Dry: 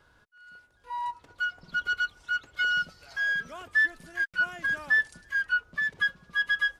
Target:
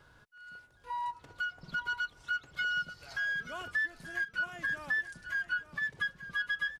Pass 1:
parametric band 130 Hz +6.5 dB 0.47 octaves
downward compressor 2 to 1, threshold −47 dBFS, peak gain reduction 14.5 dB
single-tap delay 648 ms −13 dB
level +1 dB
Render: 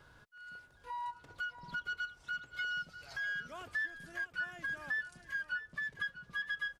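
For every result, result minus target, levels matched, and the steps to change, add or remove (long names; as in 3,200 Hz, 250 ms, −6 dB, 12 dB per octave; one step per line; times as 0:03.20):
echo 234 ms early; downward compressor: peak gain reduction +4.5 dB
change: single-tap delay 882 ms −13 dB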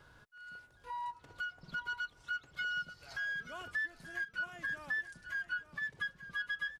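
downward compressor: peak gain reduction +4.5 dB
change: downward compressor 2 to 1, threshold −38 dBFS, peak gain reduction 10 dB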